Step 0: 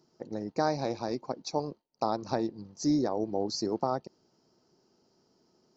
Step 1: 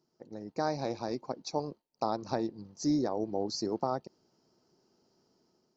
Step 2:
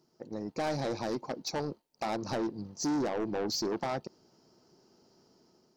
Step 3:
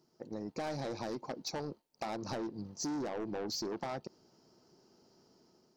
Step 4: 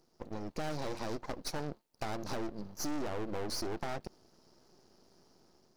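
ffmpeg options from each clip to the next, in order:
-af "dynaudnorm=f=220:g=5:m=7dB,volume=-9dB"
-af "asoftclip=type=tanh:threshold=-34dB,volume=6.5dB"
-af "acompressor=threshold=-34dB:ratio=6,volume=-1.5dB"
-af "aeval=exprs='max(val(0),0)':c=same,volume=5dB"

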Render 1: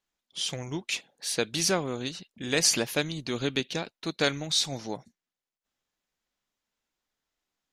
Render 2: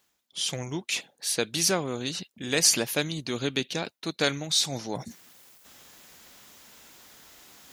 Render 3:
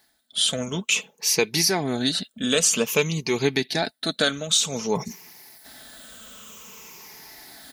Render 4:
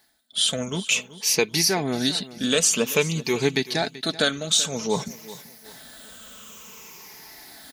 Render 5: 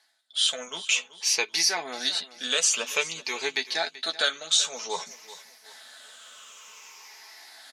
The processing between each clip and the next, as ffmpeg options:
-af "highpass=62,highshelf=f=9.1k:g=9,areverse,acompressor=mode=upward:threshold=-27dB:ratio=2.5,areverse"
-af "afftfilt=real='re*pow(10,11/40*sin(2*PI*(0.78*log(max(b,1)*sr/1024/100)/log(2)-(-0.53)*(pts-256)/sr)))':imag='im*pow(10,11/40*sin(2*PI*(0.78*log(max(b,1)*sr/1024/100)/log(2)-(-0.53)*(pts-256)/sr)))':win_size=1024:overlap=0.75,aecho=1:1:4.6:0.41,alimiter=limit=-14.5dB:level=0:latency=1:release=288,volume=5.5dB"
-af "aecho=1:1:383|766|1149:0.141|0.0509|0.0183"
-filter_complex "[0:a]highpass=780,lowpass=7.6k,asplit=2[a][b];[b]adelay=12,volume=-7dB[c];[a][c]amix=inputs=2:normalize=0,volume=-1.5dB"

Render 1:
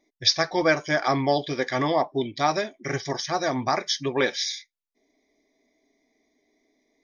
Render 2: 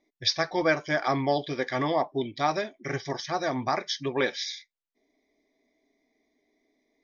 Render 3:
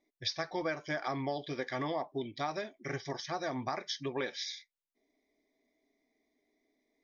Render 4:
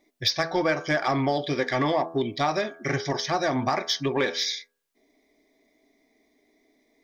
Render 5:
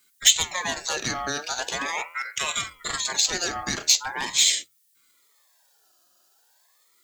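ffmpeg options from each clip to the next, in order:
-af "lowpass=5.1k,volume=-3dB"
-af "acompressor=threshold=-26dB:ratio=4,volume=-5.5dB"
-filter_complex "[0:a]bandreject=f=82.53:t=h:w=4,bandreject=f=165.06:t=h:w=4,bandreject=f=247.59:t=h:w=4,bandreject=f=330.12:t=h:w=4,bandreject=f=412.65:t=h:w=4,bandreject=f=495.18:t=h:w=4,bandreject=f=577.71:t=h:w=4,bandreject=f=660.24:t=h:w=4,bandreject=f=742.77:t=h:w=4,bandreject=f=825.3:t=h:w=4,bandreject=f=907.83:t=h:w=4,bandreject=f=990.36:t=h:w=4,bandreject=f=1.07289k:t=h:w=4,bandreject=f=1.15542k:t=h:w=4,bandreject=f=1.23795k:t=h:w=4,bandreject=f=1.32048k:t=h:w=4,bandreject=f=1.40301k:t=h:w=4,bandreject=f=1.48554k:t=h:w=4,bandreject=f=1.56807k:t=h:w=4,bandreject=f=1.6506k:t=h:w=4,asplit=2[a][b];[b]asoftclip=type=tanh:threshold=-33dB,volume=-4.5dB[c];[a][c]amix=inputs=2:normalize=0,volume=8.5dB"
-af "aexciter=amount=7.7:drive=8.1:freq=4.5k,aeval=exprs='val(0)*sin(2*PI*1400*n/s+1400*0.3/0.41*sin(2*PI*0.41*n/s))':c=same,volume=-3dB"

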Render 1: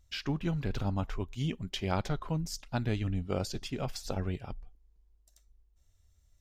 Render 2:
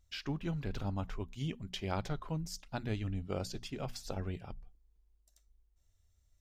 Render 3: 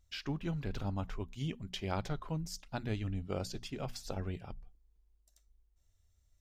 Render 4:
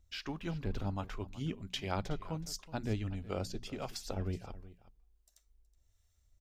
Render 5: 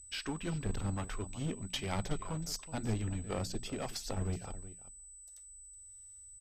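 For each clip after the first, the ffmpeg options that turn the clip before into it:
-af "bandreject=f=60:t=h:w=6,bandreject=f=120:t=h:w=6,bandreject=f=180:t=h:w=6,bandreject=f=240:t=h:w=6,volume=-4.5dB"
-af anull
-filter_complex "[0:a]equalizer=f=140:t=o:w=0.28:g=-7.5,acrossover=split=610[a][b];[a]aeval=exprs='val(0)*(1-0.5/2+0.5/2*cos(2*PI*1.4*n/s))':c=same[c];[b]aeval=exprs='val(0)*(1-0.5/2-0.5/2*cos(2*PI*1.4*n/s))':c=same[d];[c][d]amix=inputs=2:normalize=0,aecho=1:1:371:0.133,volume=3dB"
-af "aeval=exprs='clip(val(0),-1,0.0133)':c=same,aeval=exprs='val(0)+0.002*sin(2*PI*8000*n/s)':c=same,aresample=32000,aresample=44100,volume=3dB"

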